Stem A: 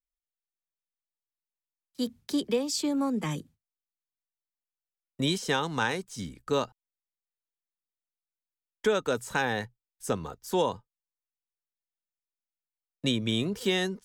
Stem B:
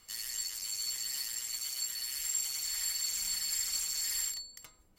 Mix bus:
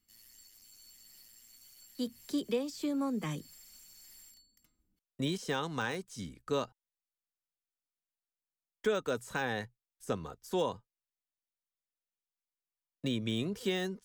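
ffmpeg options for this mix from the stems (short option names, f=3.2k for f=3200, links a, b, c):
-filter_complex "[0:a]deesser=0.85,bandreject=f=880:w=12,volume=-5dB,asplit=2[a][b];[1:a]equalizer=f=125:t=o:w=1:g=-3,equalizer=f=250:t=o:w=1:g=9,equalizer=f=500:t=o:w=1:g=-10,equalizer=f=1k:t=o:w=1:g=-11,equalizer=f=2k:t=o:w=1:g=-5,equalizer=f=4k:t=o:w=1:g=-6,equalizer=f=8k:t=o:w=1:g=-8,aeval=exprs='(tanh(112*val(0)+0.3)-tanh(0.3))/112':c=same,volume=-10.5dB[c];[b]apad=whole_len=220018[d];[c][d]sidechaincompress=threshold=-41dB:ratio=8:attack=48:release=215[e];[a][e]amix=inputs=2:normalize=0"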